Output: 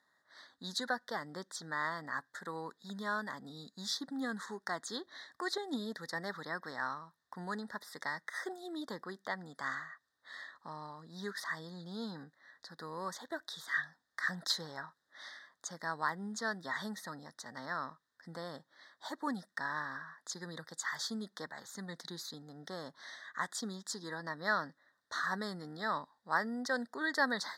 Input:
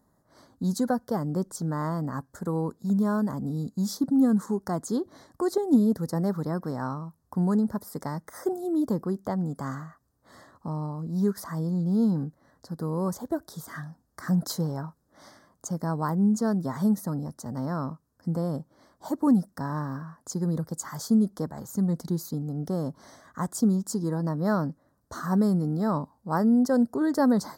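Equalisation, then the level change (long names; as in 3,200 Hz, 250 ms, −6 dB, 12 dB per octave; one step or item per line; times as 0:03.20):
pair of resonant band-passes 2,600 Hz, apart 0.96 octaves
+13.0 dB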